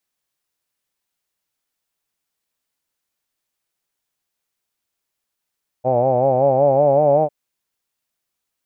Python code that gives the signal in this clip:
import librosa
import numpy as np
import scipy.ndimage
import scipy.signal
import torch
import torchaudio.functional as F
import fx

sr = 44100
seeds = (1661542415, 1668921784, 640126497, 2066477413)

y = fx.formant_vowel(sr, seeds[0], length_s=1.45, hz=123.0, glide_st=3.5, vibrato_hz=5.3, vibrato_st=0.9, f1_hz=570.0, f2_hz=800.0, f3_hz=2400.0)